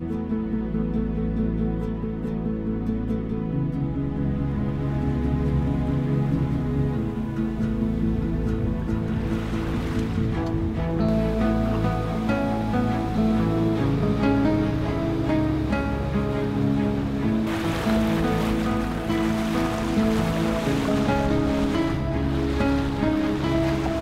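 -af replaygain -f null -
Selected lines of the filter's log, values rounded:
track_gain = +6.7 dB
track_peak = 0.267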